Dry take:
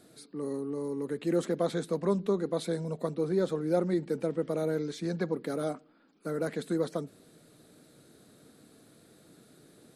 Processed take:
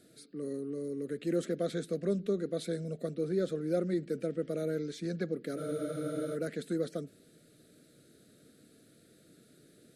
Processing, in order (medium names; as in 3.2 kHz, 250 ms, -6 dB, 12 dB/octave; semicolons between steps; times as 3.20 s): Butterworth band-stop 930 Hz, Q 1.4; spectral freeze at 5.59 s, 0.77 s; trim -3 dB